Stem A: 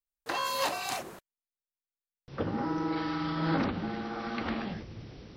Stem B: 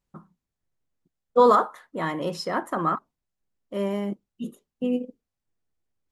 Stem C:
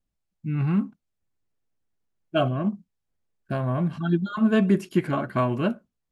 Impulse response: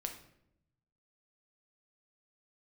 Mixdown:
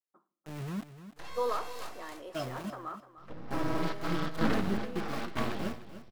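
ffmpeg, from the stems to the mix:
-filter_complex "[0:a]aeval=exprs='max(val(0),0)':c=same,adelay=900,volume=1.5dB,asplit=3[a][b][c];[b]volume=-11.5dB[d];[c]volume=-15dB[e];[1:a]highpass=f=310:w=0.5412,highpass=f=310:w=1.3066,volume=-18dB,asplit=3[f][g][h];[g]volume=-9dB[i];[h]volume=-12.5dB[j];[2:a]aeval=exprs='val(0)*gte(abs(val(0)),0.0562)':c=same,volume=-14dB,asplit=3[k][l][m];[l]volume=-12.5dB[n];[m]apad=whole_len=276318[o];[a][o]sidechaingate=range=-33dB:threshold=-43dB:ratio=16:detection=peak[p];[3:a]atrim=start_sample=2205[q];[d][i]amix=inputs=2:normalize=0[r];[r][q]afir=irnorm=-1:irlink=0[s];[e][j][n]amix=inputs=3:normalize=0,aecho=0:1:300|600|900:1|0.18|0.0324[t];[p][f][k][s][t]amix=inputs=5:normalize=0"

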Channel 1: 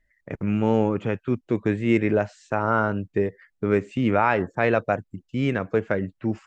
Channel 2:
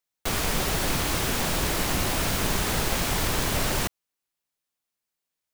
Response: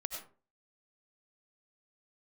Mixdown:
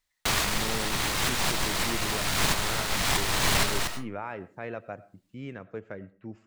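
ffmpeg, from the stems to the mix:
-filter_complex "[0:a]deesser=0.75,volume=-17dB,asplit=3[a][b][c];[b]volume=-13.5dB[d];[1:a]equalizer=f=125:t=o:w=1:g=4,equalizer=f=1k:t=o:w=1:g=6,equalizer=f=2k:t=o:w=1:g=6,equalizer=f=4k:t=o:w=1:g=7,equalizer=f=8k:t=o:w=1:g=5,aeval=exprs='clip(val(0),-1,0.0668)':c=same,volume=-4.5dB,asplit=2[e][f];[f]volume=-5.5dB[g];[c]apad=whole_len=244016[h];[e][h]sidechaincompress=threshold=-45dB:ratio=8:attack=16:release=277[i];[2:a]atrim=start_sample=2205[j];[d][g]amix=inputs=2:normalize=0[k];[k][j]afir=irnorm=-1:irlink=0[l];[a][i][l]amix=inputs=3:normalize=0"

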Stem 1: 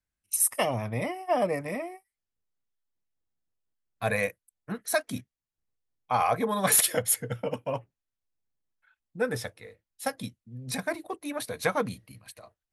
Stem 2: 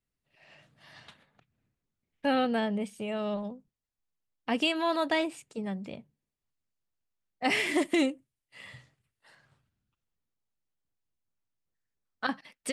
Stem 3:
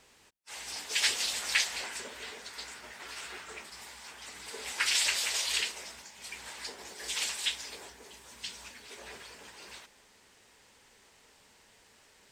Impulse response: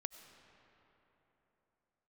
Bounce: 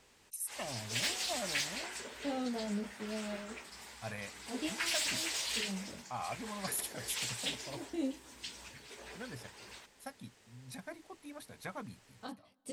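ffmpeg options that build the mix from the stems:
-filter_complex "[0:a]equalizer=f=480:w=6.4:g=-11.5,volume=-16dB,asplit=2[a][b];[1:a]equalizer=f=1.8k:w=1.1:g=-13.5,flanger=delay=17.5:depth=3.7:speed=0.27,volume=-8dB,asplit=2[c][d];[d]volume=-16dB[e];[2:a]asoftclip=type=tanh:threshold=-24dB,volume=-4dB[f];[b]apad=whole_len=561080[g];[c][g]sidechaincompress=threshold=-59dB:ratio=8:attack=11:release=299[h];[3:a]atrim=start_sample=2205[i];[e][i]afir=irnorm=-1:irlink=0[j];[a][h][f][j]amix=inputs=4:normalize=0,lowshelf=f=450:g=4"

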